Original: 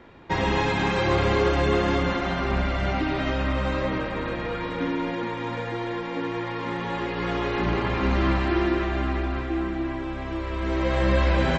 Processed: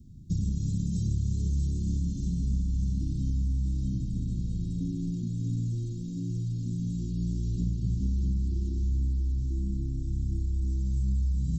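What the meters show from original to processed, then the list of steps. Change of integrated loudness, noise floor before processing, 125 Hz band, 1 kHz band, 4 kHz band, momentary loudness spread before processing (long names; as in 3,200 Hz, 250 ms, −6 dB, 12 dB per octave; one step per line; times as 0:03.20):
−5.0 dB, −32 dBFS, +1.0 dB, below −40 dB, below −20 dB, 8 LU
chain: inverse Chebyshev band-stop filter 710–1,900 Hz, stop band 80 dB
downward compressor, threshold −33 dBFS, peak gain reduction 13 dB
feedback echo with a high-pass in the loop 640 ms, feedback 45%, high-pass 430 Hz, level −4.5 dB
level +8 dB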